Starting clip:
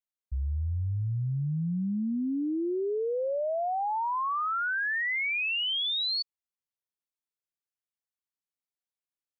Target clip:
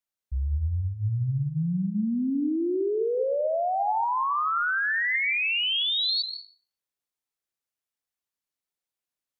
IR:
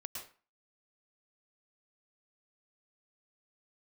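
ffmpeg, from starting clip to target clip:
-filter_complex "[0:a]bandreject=f=50:t=h:w=6,bandreject=f=100:t=h:w=6,bandreject=f=150:t=h:w=6,bandreject=f=200:t=h:w=6,asplit=2[a][b];[1:a]atrim=start_sample=2205,afade=t=out:st=0.44:d=0.01,atrim=end_sample=19845,asetrate=30429,aresample=44100[c];[b][c]afir=irnorm=-1:irlink=0,volume=-3.5dB[d];[a][d]amix=inputs=2:normalize=0"

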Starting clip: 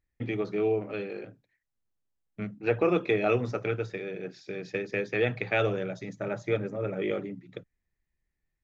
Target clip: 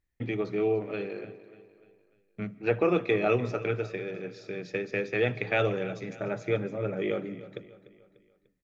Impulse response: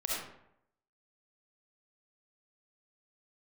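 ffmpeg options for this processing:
-filter_complex "[0:a]aecho=1:1:296|592|888|1184:0.141|0.0664|0.0312|0.0147,asplit=2[a][b];[1:a]atrim=start_sample=2205,adelay=76[c];[b][c]afir=irnorm=-1:irlink=0,volume=-25.5dB[d];[a][d]amix=inputs=2:normalize=0"

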